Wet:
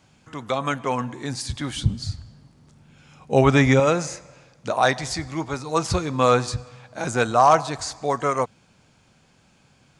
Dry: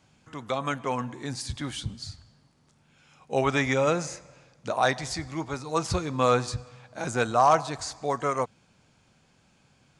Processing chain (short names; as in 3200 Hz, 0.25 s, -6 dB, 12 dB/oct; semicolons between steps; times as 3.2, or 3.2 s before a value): 1.76–3.8 low shelf 350 Hz +9.5 dB; gain +4.5 dB